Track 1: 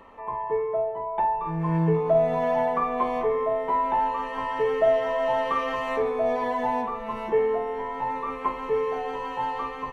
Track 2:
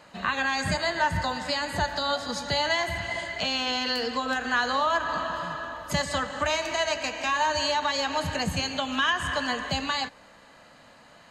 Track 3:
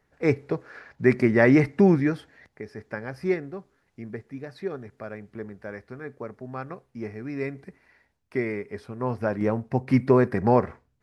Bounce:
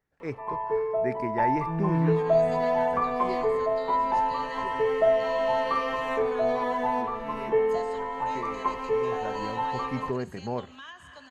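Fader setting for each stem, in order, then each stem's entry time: -1.0, -20.0, -12.5 dB; 0.20, 1.80, 0.00 s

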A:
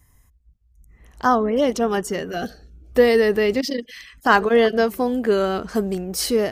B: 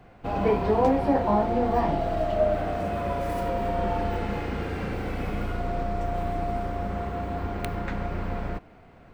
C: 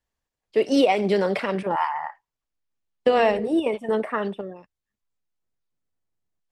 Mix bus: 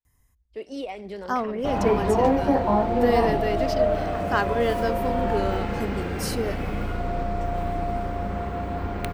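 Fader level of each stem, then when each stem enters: -8.5, +1.5, -15.0 dB; 0.05, 1.40, 0.00 s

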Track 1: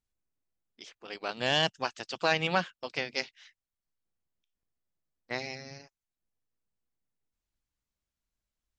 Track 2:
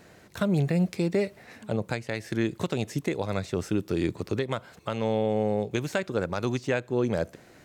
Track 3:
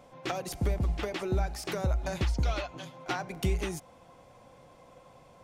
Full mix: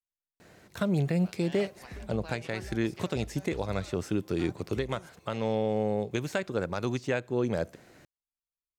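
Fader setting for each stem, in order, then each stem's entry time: -19.5, -2.5, -15.5 dB; 0.00, 0.40, 1.30 s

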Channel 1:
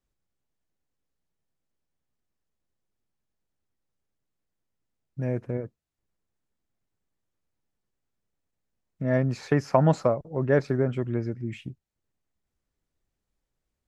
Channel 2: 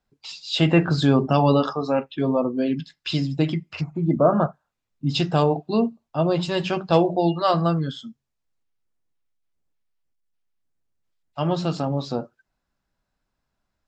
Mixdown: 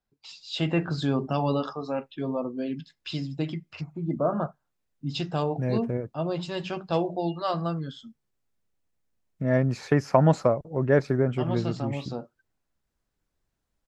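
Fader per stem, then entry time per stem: +1.0, -8.0 dB; 0.40, 0.00 s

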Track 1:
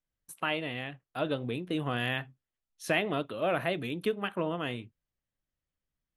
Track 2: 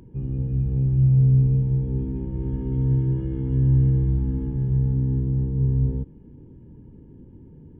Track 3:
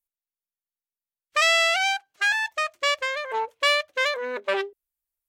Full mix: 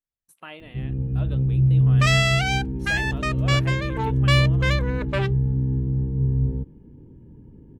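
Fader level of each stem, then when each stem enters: -9.0, -0.5, -2.0 dB; 0.00, 0.60, 0.65 s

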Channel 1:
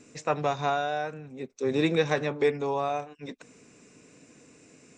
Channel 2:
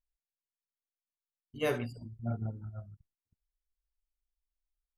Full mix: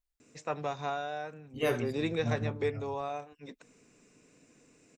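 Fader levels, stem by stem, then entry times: -7.5, +1.5 dB; 0.20, 0.00 s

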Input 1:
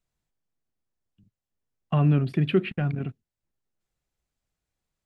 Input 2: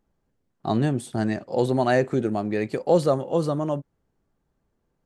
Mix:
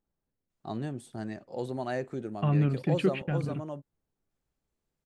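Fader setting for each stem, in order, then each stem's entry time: -4.5, -12.5 dB; 0.50, 0.00 s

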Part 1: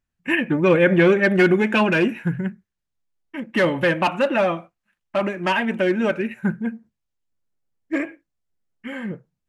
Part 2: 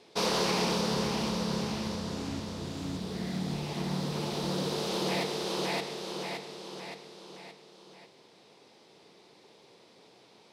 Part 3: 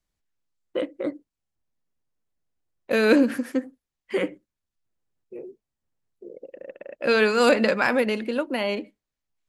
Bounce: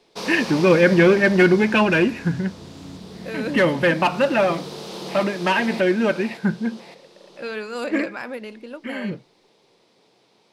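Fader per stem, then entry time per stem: +1.0, -2.0, -10.5 dB; 0.00, 0.00, 0.35 s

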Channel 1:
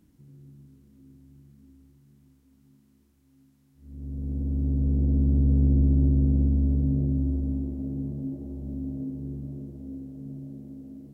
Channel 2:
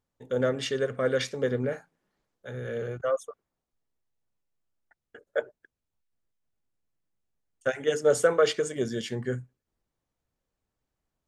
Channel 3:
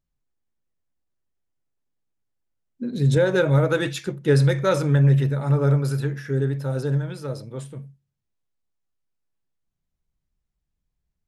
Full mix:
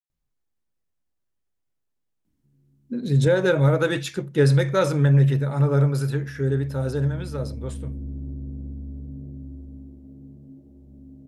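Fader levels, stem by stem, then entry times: -12.5 dB, off, 0.0 dB; 2.25 s, off, 0.10 s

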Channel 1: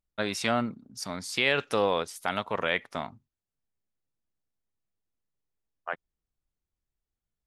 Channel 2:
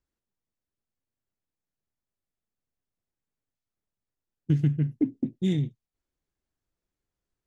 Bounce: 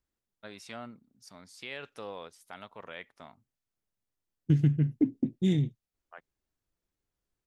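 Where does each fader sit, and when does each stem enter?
-16.0, -0.5 dB; 0.25, 0.00 s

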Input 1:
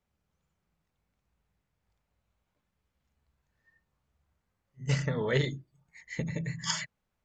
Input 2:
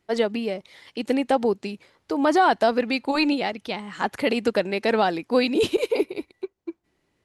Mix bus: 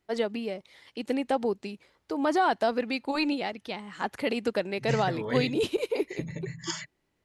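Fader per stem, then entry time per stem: -3.0, -6.0 dB; 0.00, 0.00 s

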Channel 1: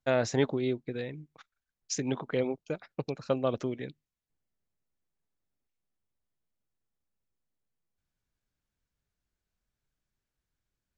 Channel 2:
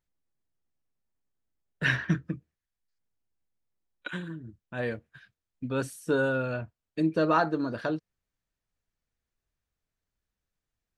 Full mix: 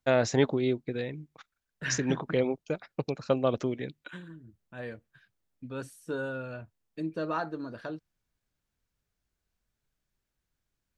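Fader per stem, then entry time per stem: +2.5, -8.0 dB; 0.00, 0.00 s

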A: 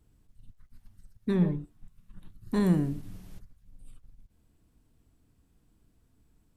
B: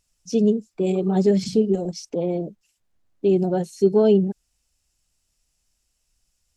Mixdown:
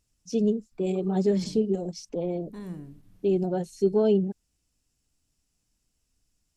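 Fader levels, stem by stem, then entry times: -14.0, -5.5 dB; 0.00, 0.00 s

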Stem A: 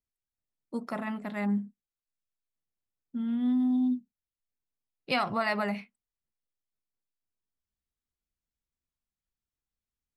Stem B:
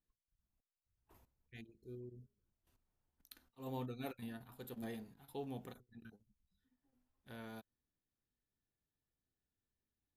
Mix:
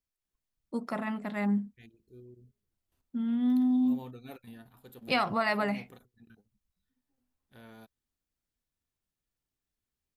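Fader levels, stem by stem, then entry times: +0.5, -1.5 dB; 0.00, 0.25 s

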